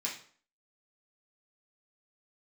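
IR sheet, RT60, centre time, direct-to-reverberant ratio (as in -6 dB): 0.50 s, 27 ms, -5.0 dB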